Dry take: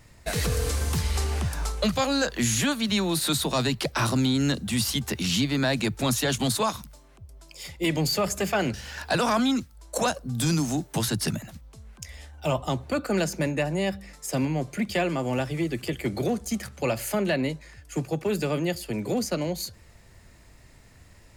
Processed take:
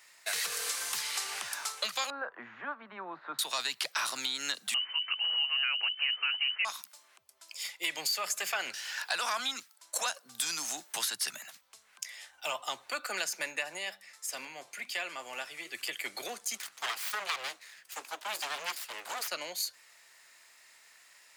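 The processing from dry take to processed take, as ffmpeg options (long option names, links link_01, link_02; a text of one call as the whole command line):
ffmpeg -i in.wav -filter_complex "[0:a]asettb=1/sr,asplit=3[link_01][link_02][link_03];[link_01]atrim=end=2.104[link_04];[link_02]atrim=start=2.1:end=3.39,asetpts=PTS-STARTPTS,afade=type=in:duration=0.004:curve=qsin,afade=type=out:start_time=1.286:duration=0.004:curve=qsin,lowpass=frequency=1300:width=0.5412,lowpass=frequency=1300:width=1.3066[link_05];[link_03]atrim=start=3.386[link_06];[link_04][link_05]acrossfade=duration=0.004:curve1=hsin:curve2=qsin[link_07];[link_07][link_06]acrossfade=duration=0.004:curve1=qsin:curve2=hsin,asettb=1/sr,asplit=3[link_08][link_09][link_10];[link_08]atrim=end=4.744[link_11];[link_09]atrim=start=4.74:end=6.65,asetpts=PTS-STARTPTS,afade=type=in:duration=0.004:curve=qsin,afade=type=out:start_time=1.906:duration=0.004:curve=qsin,lowpass=frequency=2600:width_type=q:width=0.5098,lowpass=frequency=2600:width_type=q:width=0.6013,lowpass=frequency=2600:width_type=q:width=0.9,lowpass=frequency=2600:width_type=q:width=2.563,afreqshift=-3100[link_12];[link_10]atrim=start=6.646[link_13];[link_11][link_12]acrossfade=duration=0.004:curve1=hsin:curve2=qsin[link_14];[link_14][link_13]acrossfade=duration=0.004:curve1=qsin:curve2=hsin,asplit=3[link_15][link_16][link_17];[link_15]afade=type=out:start_time=13.77:duration=0.02[link_18];[link_16]flanger=delay=5.1:depth=6.3:regen=-84:speed=1:shape=sinusoidal,afade=type=in:start_time=13.77:duration=0.02,afade=type=out:start_time=15.73:duration=0.02[link_19];[link_17]afade=type=in:start_time=15.73:duration=0.02[link_20];[link_18][link_19][link_20]amix=inputs=3:normalize=0,asplit=3[link_21][link_22][link_23];[link_21]afade=type=out:start_time=16.57:duration=0.02[link_24];[link_22]aeval=exprs='abs(val(0))':channel_layout=same,afade=type=in:start_time=16.57:duration=0.02,afade=type=out:start_time=19.27:duration=0.02[link_25];[link_23]afade=type=in:start_time=19.27:duration=0.02[link_26];[link_24][link_25][link_26]amix=inputs=3:normalize=0,highpass=1300,acompressor=threshold=-32dB:ratio=3,volume=2dB" out.wav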